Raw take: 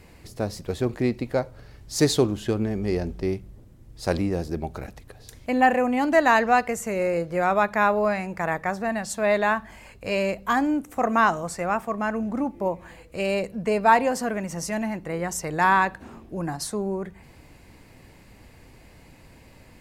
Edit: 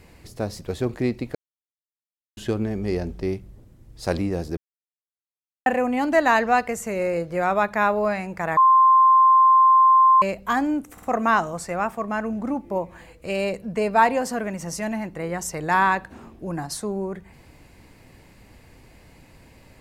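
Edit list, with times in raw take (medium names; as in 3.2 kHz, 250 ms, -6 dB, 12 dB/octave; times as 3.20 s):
1.35–2.37 s: mute
4.57–5.66 s: mute
8.57–10.22 s: bleep 1.05 kHz -11 dBFS
10.93 s: stutter 0.05 s, 3 plays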